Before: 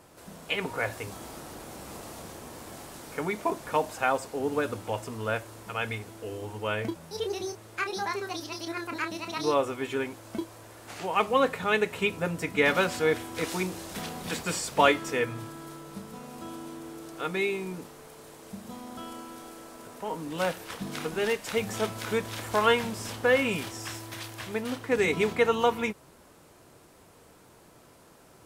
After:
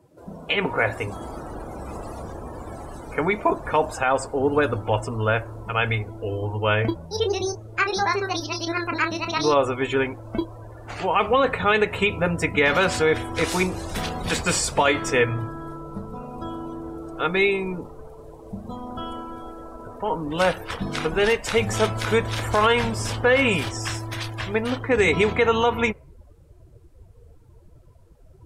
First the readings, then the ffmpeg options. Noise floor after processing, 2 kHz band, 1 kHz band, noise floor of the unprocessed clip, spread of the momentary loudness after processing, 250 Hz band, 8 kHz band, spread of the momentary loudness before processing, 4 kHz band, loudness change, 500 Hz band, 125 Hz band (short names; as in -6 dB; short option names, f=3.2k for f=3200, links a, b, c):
-50 dBFS, +7.0 dB, +6.0 dB, -56 dBFS, 16 LU, +6.0 dB, +6.5 dB, 18 LU, +6.5 dB, +6.5 dB, +6.0 dB, +11.0 dB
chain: -af "asubboost=boost=5:cutoff=80,afftdn=nr=23:nf=-46,alimiter=level_in=17.5dB:limit=-1dB:release=50:level=0:latency=1,volume=-8dB"